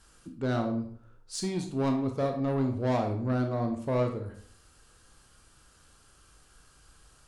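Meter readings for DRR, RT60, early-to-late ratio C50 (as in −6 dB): 4.0 dB, 0.55 s, 7.5 dB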